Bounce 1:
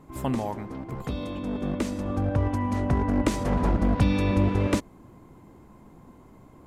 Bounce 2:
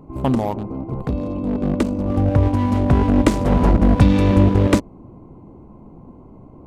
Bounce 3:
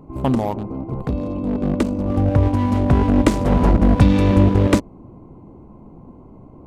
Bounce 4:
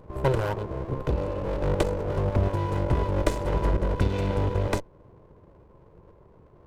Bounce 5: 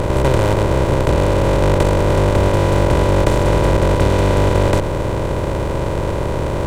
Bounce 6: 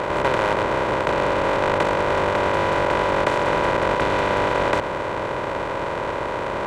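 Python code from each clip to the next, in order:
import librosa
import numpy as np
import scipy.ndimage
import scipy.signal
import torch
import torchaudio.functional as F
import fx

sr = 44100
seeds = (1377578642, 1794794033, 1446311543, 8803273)

y1 = fx.wiener(x, sr, points=25)
y1 = F.gain(torch.from_numpy(y1), 9.0).numpy()
y2 = y1
y3 = fx.lower_of_two(y2, sr, delay_ms=2.0)
y3 = fx.rider(y3, sr, range_db=4, speed_s=0.5)
y3 = F.gain(torch.from_numpy(y3), -6.0).numpy()
y4 = fx.bin_compress(y3, sr, power=0.2)
y4 = F.gain(torch.from_numpy(y4), 3.0).numpy()
y5 = fx.octave_divider(y4, sr, octaves=2, level_db=3.0)
y5 = fx.bandpass_q(y5, sr, hz=1500.0, q=0.83)
y5 = F.gain(torch.from_numpy(y5), 3.0).numpy()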